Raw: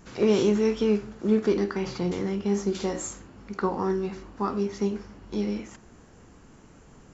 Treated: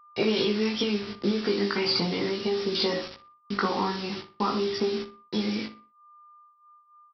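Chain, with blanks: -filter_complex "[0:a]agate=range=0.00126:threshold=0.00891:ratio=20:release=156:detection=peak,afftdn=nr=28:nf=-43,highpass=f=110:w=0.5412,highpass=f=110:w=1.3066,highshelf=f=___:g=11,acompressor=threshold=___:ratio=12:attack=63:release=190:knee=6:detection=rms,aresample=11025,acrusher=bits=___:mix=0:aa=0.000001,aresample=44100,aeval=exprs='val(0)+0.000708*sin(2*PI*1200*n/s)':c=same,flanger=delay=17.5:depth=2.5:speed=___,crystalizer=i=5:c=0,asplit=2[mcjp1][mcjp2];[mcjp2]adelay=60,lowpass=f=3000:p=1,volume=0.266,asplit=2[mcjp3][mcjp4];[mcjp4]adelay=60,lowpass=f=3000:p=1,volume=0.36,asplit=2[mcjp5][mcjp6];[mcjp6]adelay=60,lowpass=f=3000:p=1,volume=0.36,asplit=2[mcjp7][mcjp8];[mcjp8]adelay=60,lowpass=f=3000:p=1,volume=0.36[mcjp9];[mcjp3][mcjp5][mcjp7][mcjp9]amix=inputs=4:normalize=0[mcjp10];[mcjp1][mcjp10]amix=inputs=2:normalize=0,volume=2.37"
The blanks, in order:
3600, 0.0316, 7, 0.4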